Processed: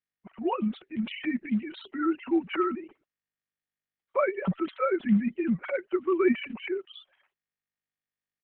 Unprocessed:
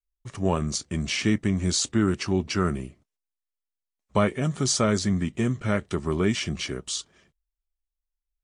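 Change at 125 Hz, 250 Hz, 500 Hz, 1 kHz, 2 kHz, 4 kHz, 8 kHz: -12.0 dB, -2.0 dB, -0.5 dB, -1.0 dB, -3.5 dB, -14.0 dB, under -40 dB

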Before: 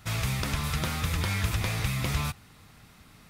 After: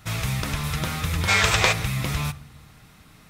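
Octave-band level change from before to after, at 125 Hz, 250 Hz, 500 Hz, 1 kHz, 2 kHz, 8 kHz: +3.0 dB, +3.5 dB, +8.5 dB, +8.0 dB, +10.0 dB, +7.0 dB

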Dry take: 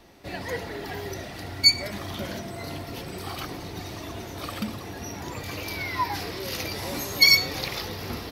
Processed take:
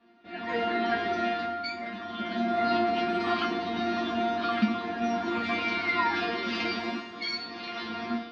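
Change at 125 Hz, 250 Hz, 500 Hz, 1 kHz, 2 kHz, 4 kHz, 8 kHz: -9.5 dB, +6.0 dB, +4.5 dB, +6.5 dB, -2.5 dB, -11.0 dB, under -20 dB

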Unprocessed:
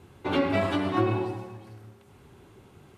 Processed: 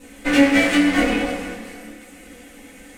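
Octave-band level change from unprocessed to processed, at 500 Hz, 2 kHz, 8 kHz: +5.0 dB, +15.0 dB, no reading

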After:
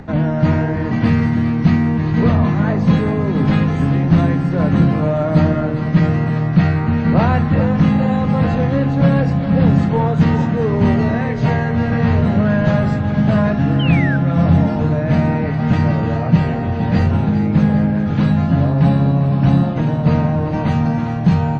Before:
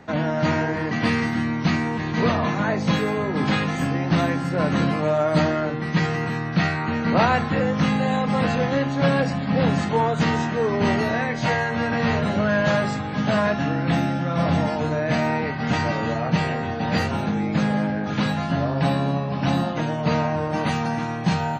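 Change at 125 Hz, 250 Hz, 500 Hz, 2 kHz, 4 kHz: +10.5 dB, +8.0 dB, +2.5 dB, -1.0 dB, -3.5 dB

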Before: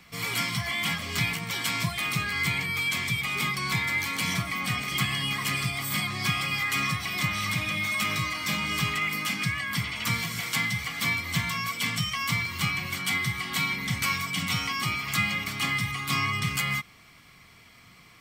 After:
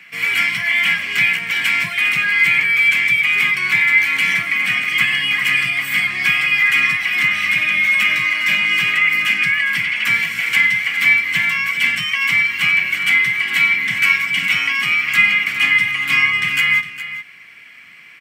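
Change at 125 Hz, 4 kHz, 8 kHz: -6.5 dB, +8.5 dB, +0.5 dB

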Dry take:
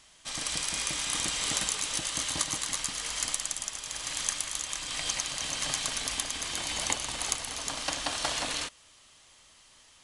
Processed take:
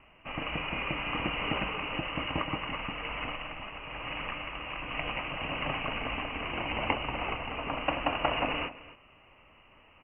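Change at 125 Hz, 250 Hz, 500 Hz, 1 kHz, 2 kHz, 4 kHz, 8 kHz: +6.5 dB, +7.0 dB, +7.0 dB, +5.5 dB, +3.0 dB, -6.0 dB, under -40 dB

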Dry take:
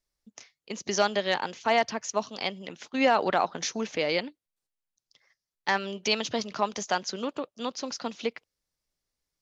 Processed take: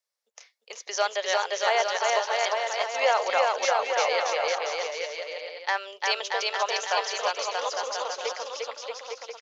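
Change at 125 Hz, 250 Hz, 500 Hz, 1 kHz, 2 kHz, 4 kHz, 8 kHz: under -35 dB, under -20 dB, +3.0 dB, +3.5 dB, +4.0 dB, +3.5 dB, no reading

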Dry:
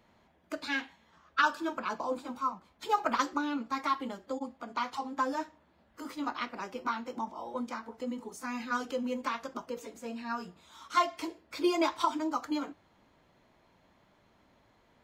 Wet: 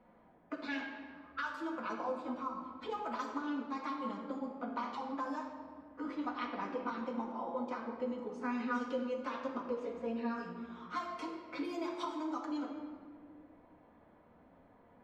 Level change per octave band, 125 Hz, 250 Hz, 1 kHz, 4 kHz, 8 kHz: no reading, -2.5 dB, -7.5 dB, -10.5 dB, under -10 dB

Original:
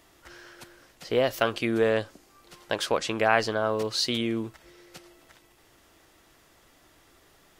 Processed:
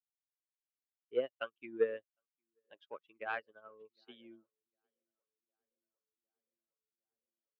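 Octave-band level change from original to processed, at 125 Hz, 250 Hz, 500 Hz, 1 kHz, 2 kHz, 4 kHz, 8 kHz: under -30 dB, -22.0 dB, -12.5 dB, -18.0 dB, -16.0 dB, -26.5 dB, under -40 dB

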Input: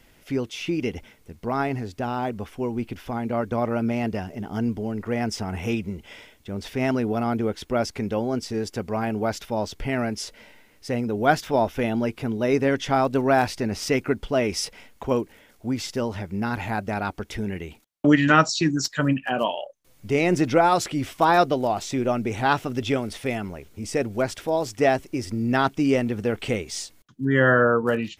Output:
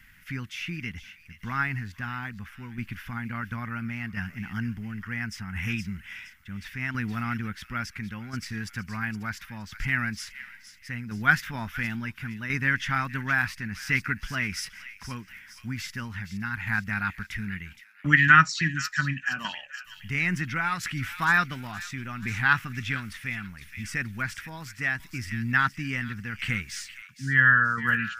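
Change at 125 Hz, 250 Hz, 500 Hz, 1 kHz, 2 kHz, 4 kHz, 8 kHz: -2.5 dB, -10.0 dB, -24.5 dB, -5.5 dB, +5.0 dB, -4.5 dB, -6.0 dB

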